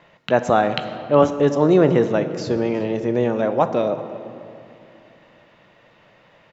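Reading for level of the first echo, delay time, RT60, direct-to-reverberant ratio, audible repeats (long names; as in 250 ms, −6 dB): −21.0 dB, 367 ms, 2.8 s, 9.0 dB, 1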